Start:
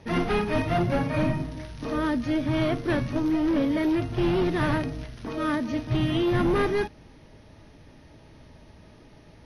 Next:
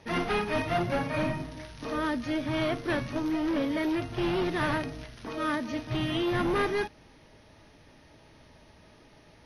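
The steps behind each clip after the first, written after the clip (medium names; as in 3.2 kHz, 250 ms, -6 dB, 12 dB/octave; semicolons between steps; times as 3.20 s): bass shelf 410 Hz -8 dB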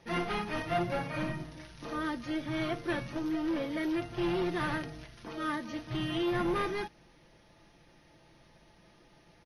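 comb 5.8 ms, depth 51%; trim -5.5 dB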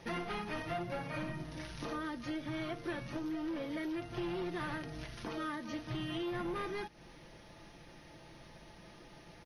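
compression 4:1, threshold -44 dBFS, peak gain reduction 14.5 dB; trim +5.5 dB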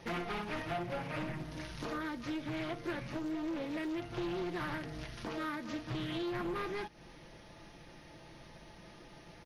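loudspeaker Doppler distortion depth 0.36 ms; trim +1 dB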